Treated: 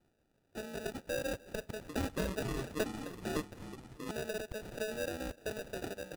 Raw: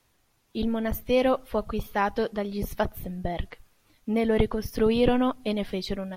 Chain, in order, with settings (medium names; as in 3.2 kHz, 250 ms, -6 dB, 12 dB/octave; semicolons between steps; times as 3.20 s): compression, threshold -26 dBFS, peak gain reduction 10 dB; high-pass 520 Hz 12 dB/octave; sample-and-hold 41×; 1.76–4.11 s: ever faster or slower copies 130 ms, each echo -6 st, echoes 2; feedback delay 301 ms, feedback 59%, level -23.5 dB; trim -3.5 dB